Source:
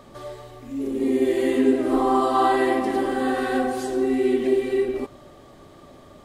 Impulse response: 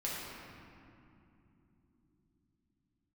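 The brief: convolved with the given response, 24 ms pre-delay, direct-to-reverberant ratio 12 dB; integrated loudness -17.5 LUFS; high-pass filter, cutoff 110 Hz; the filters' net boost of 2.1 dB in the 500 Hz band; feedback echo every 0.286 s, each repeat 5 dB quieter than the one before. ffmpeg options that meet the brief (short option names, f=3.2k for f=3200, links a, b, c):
-filter_complex "[0:a]highpass=110,equalizer=f=500:t=o:g=3,aecho=1:1:286|572|858|1144|1430|1716|2002:0.562|0.315|0.176|0.0988|0.0553|0.031|0.0173,asplit=2[a][b];[1:a]atrim=start_sample=2205,adelay=24[c];[b][c]afir=irnorm=-1:irlink=0,volume=-16dB[d];[a][d]amix=inputs=2:normalize=0,volume=1.5dB"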